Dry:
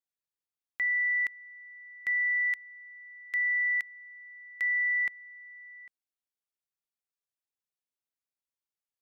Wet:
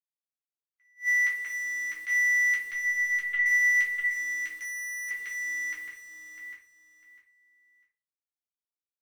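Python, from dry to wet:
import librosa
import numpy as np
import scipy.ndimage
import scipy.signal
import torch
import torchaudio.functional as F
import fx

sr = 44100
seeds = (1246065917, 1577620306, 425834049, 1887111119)

p1 = fx.bin_compress(x, sr, power=0.6)
p2 = fx.quant_companded(p1, sr, bits=4)
p3 = p1 + (p2 * librosa.db_to_amplitude(-10.0))
p4 = scipy.signal.sosfilt(scipy.signal.butter(2, 1300.0, 'highpass', fs=sr, output='sos'), p3)
p5 = 10.0 ** (-22.0 / 20.0) * np.tanh(p4 / 10.0 ** (-22.0 / 20.0))
p6 = fx.env_lowpass(p5, sr, base_hz=2700.0, full_db=-28.5)
p7 = fx.quant_dither(p6, sr, seeds[0], bits=10, dither='none')
p8 = fx.lpc_vocoder(p7, sr, seeds[1], excitation='pitch_kept', order=10, at=(2.71, 3.46))
p9 = p8 + fx.echo_feedback(p8, sr, ms=650, feedback_pct=23, wet_db=-4.5, dry=0)
p10 = fx.room_shoebox(p9, sr, seeds[2], volume_m3=200.0, walls='furnished', distance_m=3.2)
p11 = fx.overload_stage(p10, sr, gain_db=35.0, at=(4.58, 5.11))
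y = fx.attack_slew(p11, sr, db_per_s=310.0)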